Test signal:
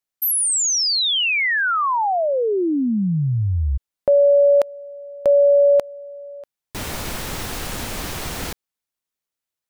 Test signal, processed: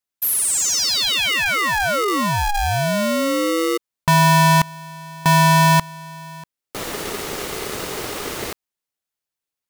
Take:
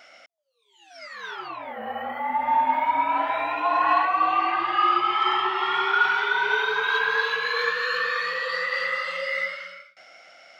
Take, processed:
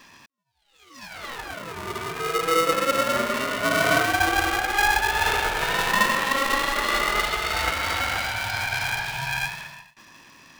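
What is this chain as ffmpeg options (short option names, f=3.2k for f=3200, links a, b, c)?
-af "aeval=exprs='val(0)*sgn(sin(2*PI*410*n/s))':c=same"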